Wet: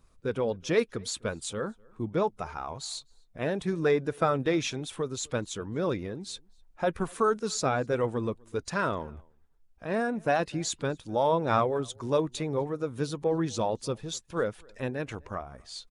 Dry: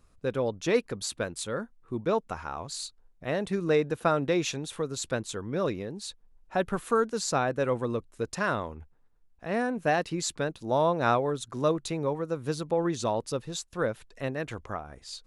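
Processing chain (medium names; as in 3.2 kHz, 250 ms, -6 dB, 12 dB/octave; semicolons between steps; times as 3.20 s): coarse spectral quantiser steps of 15 dB; speed mistake 25 fps video run at 24 fps; echo from a far wall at 43 m, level -28 dB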